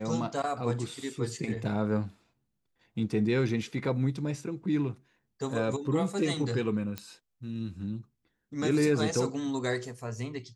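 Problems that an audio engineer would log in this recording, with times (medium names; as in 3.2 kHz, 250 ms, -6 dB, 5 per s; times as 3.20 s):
6.98 s: pop -19 dBFS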